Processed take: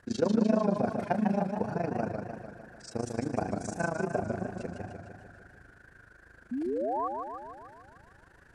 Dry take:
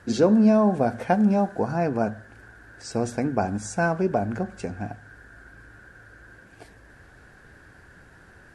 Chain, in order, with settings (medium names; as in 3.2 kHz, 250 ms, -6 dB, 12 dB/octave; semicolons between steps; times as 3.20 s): AM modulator 26 Hz, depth 85%; painted sound rise, 6.51–7.08 s, 230–1200 Hz -27 dBFS; modulated delay 150 ms, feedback 61%, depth 123 cents, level -5 dB; trim -5 dB